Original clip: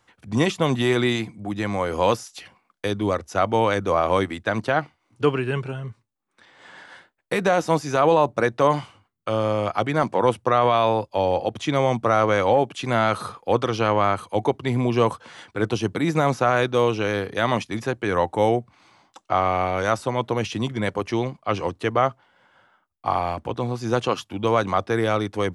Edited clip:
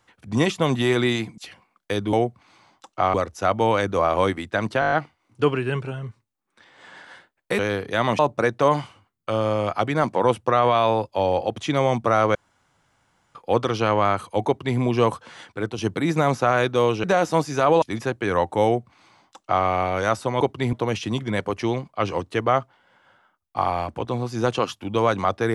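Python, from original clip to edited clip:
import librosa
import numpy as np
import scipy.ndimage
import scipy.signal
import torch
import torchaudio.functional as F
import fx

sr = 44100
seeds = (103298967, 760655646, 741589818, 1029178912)

y = fx.edit(x, sr, fx.cut(start_s=1.38, length_s=0.94),
    fx.stutter(start_s=4.73, slice_s=0.02, count=7),
    fx.swap(start_s=7.4, length_s=0.78, other_s=17.03, other_length_s=0.6),
    fx.room_tone_fill(start_s=12.34, length_s=1.0),
    fx.duplicate(start_s=14.46, length_s=0.32, to_s=20.22),
    fx.fade_out_to(start_s=15.45, length_s=0.32, floor_db=-8.5),
    fx.duplicate(start_s=18.45, length_s=1.01, to_s=3.07), tone=tone)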